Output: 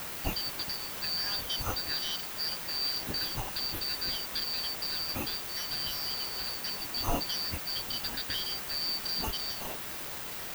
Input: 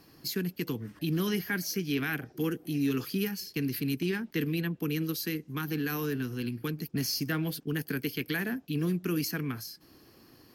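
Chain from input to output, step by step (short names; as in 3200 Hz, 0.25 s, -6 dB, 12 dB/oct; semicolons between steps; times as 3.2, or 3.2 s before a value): four-band scrambler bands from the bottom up 4321; low shelf 220 Hz +9.5 dB; in parallel at -2.5 dB: compressor, threshold -45 dBFS, peak gain reduction 18.5 dB; on the sum: requantised 6-bit, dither triangular; bell 8700 Hz -9.5 dB 2.5 oct; gain +1 dB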